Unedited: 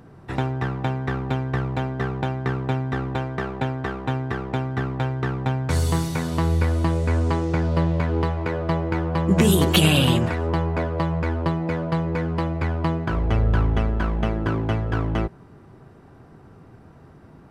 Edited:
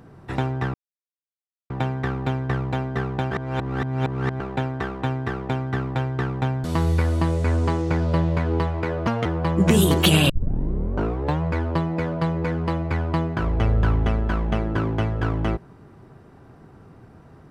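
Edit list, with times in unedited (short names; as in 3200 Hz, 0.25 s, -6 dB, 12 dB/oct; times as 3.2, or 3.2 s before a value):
0.74 insert silence 0.96 s
2.35–3.44 reverse
5.68–6.27 cut
8.7–8.96 speed 141%
10 tape start 1.12 s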